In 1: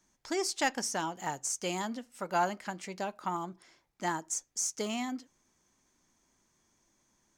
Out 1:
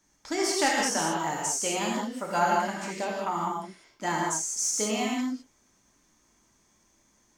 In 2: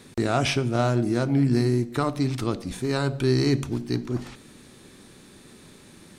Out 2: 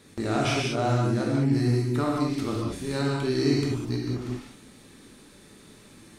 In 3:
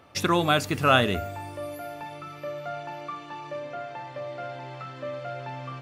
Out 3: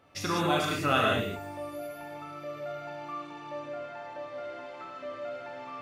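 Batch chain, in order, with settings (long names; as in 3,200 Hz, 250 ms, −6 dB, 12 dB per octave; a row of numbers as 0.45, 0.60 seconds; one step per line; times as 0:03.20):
reverb whose tail is shaped and stops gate 230 ms flat, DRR −3.5 dB
normalise the peak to −12 dBFS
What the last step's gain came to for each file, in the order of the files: +1.5, −6.5, −9.0 decibels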